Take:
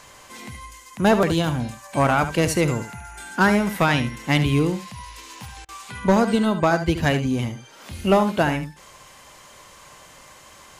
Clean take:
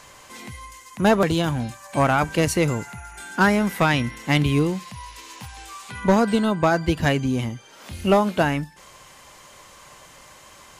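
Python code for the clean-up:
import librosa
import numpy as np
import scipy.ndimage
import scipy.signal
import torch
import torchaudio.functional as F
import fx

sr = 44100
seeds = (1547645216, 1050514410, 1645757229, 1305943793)

y = fx.fix_interpolate(x, sr, at_s=(5.65,), length_ms=35.0)
y = fx.fix_echo_inverse(y, sr, delay_ms=73, level_db=-11.0)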